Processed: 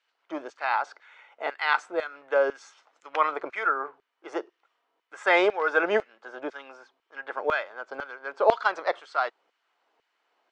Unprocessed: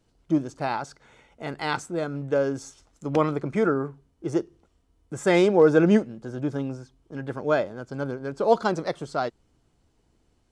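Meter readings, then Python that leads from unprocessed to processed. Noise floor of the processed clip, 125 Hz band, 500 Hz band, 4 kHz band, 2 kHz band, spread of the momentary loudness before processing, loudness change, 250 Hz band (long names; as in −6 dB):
−78 dBFS, below −25 dB, −4.0 dB, +0.5 dB, +6.0 dB, 18 LU, −2.5 dB, −14.5 dB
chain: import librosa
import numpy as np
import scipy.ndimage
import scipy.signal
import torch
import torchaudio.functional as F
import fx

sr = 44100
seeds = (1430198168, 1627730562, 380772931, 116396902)

y = fx.bandpass_edges(x, sr, low_hz=350.0, high_hz=2600.0)
y = fx.filter_lfo_highpass(y, sr, shape='saw_down', hz=2.0, low_hz=560.0, high_hz=2000.0, q=0.91)
y = y * librosa.db_to_amplitude(6.5)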